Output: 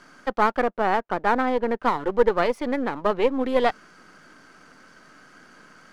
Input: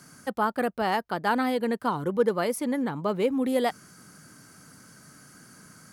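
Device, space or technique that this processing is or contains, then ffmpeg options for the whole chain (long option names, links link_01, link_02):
crystal radio: -filter_complex "[0:a]asettb=1/sr,asplit=3[link_01][link_02][link_03];[link_01]atrim=end=0.624[link_04];[link_02]atrim=start=0.62:end=1.83,asetpts=PTS-STARTPTS,afade=type=in:duration=0.004:curve=qsin,afade=type=out:start_time=1.206:duration=0.004:curve=qsin,lowpass=frequency=1400:poles=1[link_05];[link_03]atrim=start=1.826[link_06];[link_04][link_05]acrossfade=duration=0.004:curve1=hsin:curve2=qsin[link_07];[link_07][link_06]acrossfade=duration=0.004:curve1=qsin:curve2=hsin,highpass=340,lowpass=3200,aeval=exprs='if(lt(val(0),0),0.447*val(0),val(0))':channel_layout=same,volume=8dB"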